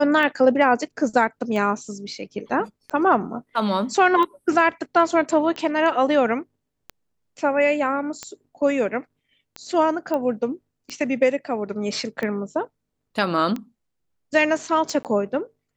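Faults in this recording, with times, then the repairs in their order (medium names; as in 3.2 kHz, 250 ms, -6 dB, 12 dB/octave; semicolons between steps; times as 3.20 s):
tick 45 rpm -16 dBFS
10.14 s: pop -14 dBFS
15.03–15.05 s: dropout 18 ms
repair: de-click; interpolate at 15.03 s, 18 ms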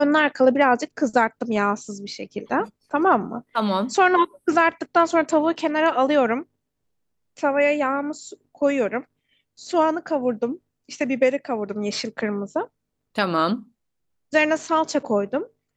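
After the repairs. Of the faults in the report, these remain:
nothing left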